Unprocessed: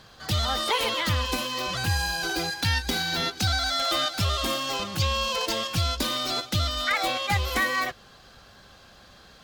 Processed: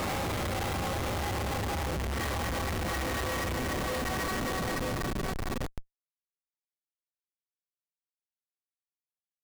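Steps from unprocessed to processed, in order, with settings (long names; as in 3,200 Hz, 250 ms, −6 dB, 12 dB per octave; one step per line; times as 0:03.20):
extreme stretch with random phases 6.1×, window 1.00 s, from 0:07.09
multi-voice chorus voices 4, 0.43 Hz, delay 30 ms, depth 3.5 ms
comparator with hysteresis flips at −28 dBFS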